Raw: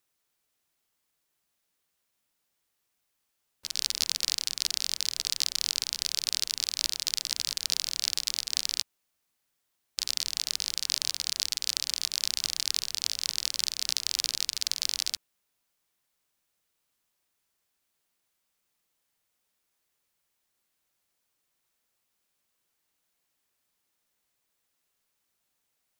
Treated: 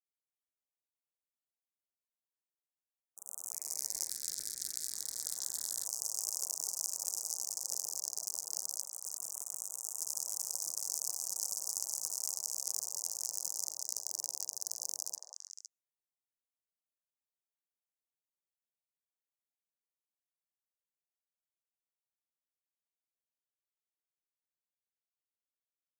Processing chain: HPF 170 Hz 24 dB/oct; gate with hold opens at -49 dBFS; Chebyshev band-stop 1200–6300 Hz, order 3; fixed phaser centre 560 Hz, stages 4; delay with a stepping band-pass 0.17 s, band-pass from 710 Hz, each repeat 1.4 oct, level -1 dB; 4.09–5.87 ring modulator 980 Hz; echoes that change speed 0.14 s, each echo +2 st, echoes 2; gain -2.5 dB

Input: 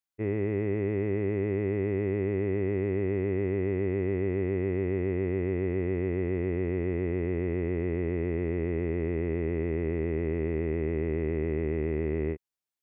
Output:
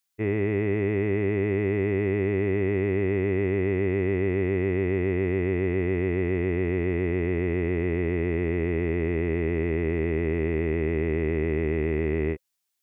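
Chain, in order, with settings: high shelf 2000 Hz +9.5 dB; notch 520 Hz, Q 12; gain +3.5 dB

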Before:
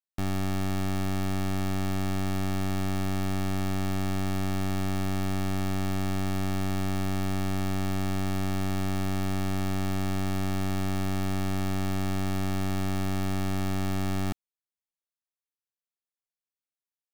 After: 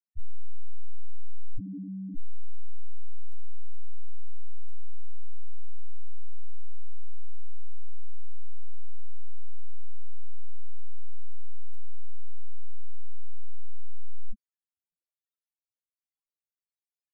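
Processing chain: 1.58–2.17 weighting filter ITU-R 468; loudest bins only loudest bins 1; gain +17 dB

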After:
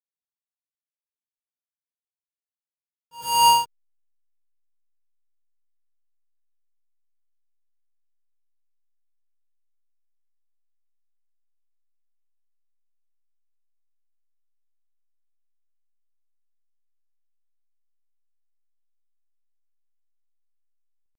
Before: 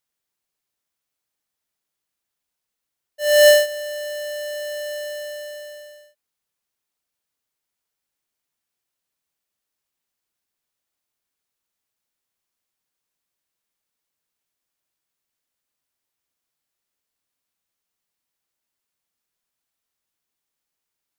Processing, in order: pitch shift +8 st; backlash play -19.5 dBFS; reverse echo 94 ms -14 dB; gain -3 dB

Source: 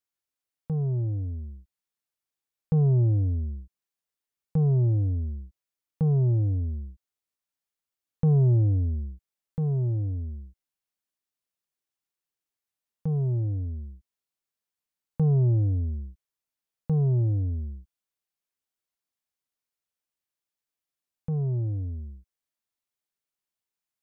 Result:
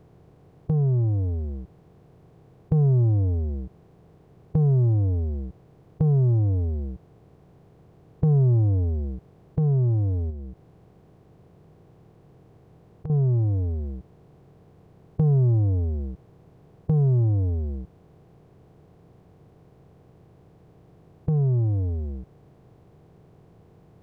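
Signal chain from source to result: per-bin compression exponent 0.4; 10.3–13.1 compressor 5:1, threshold -34 dBFS, peak gain reduction 12.5 dB

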